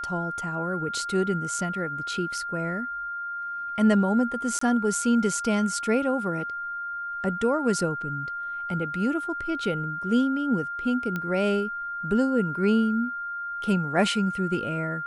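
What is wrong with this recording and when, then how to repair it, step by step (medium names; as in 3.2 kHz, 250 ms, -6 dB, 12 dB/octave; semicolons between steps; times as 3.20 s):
whine 1.4 kHz -30 dBFS
4.59–4.61 s: dropout 24 ms
11.16 s: pop -17 dBFS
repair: de-click; band-stop 1.4 kHz, Q 30; interpolate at 4.59 s, 24 ms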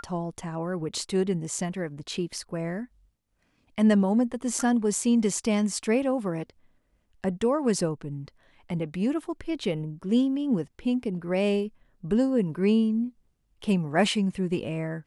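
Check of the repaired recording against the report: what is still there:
nothing left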